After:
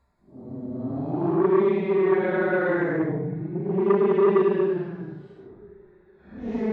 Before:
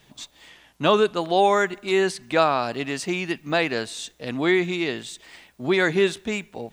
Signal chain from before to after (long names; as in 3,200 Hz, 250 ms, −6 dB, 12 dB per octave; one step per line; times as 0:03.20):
adaptive Wiener filter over 15 samples
treble cut that deepens with the level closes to 1,000 Hz, closed at −20 dBFS
extreme stretch with random phases 9×, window 0.05 s, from 0:05.55
saturating transformer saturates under 600 Hz